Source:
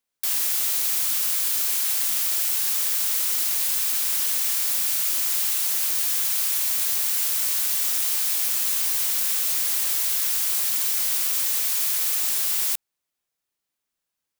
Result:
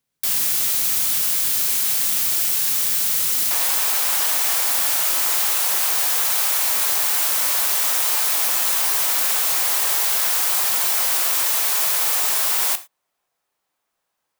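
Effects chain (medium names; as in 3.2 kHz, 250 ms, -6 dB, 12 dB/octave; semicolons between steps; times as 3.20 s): peaking EQ 120 Hz +12 dB 2.2 oct, from 3.51 s 830 Hz; gated-style reverb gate 130 ms falling, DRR 11 dB; trim +3 dB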